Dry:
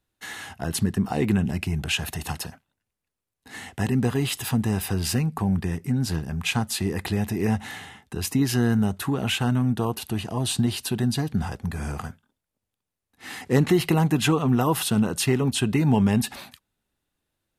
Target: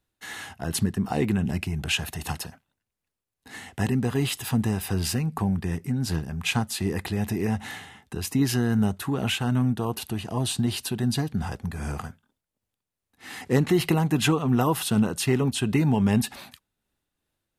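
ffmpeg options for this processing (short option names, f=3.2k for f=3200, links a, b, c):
-af "tremolo=f=2.6:d=0.3"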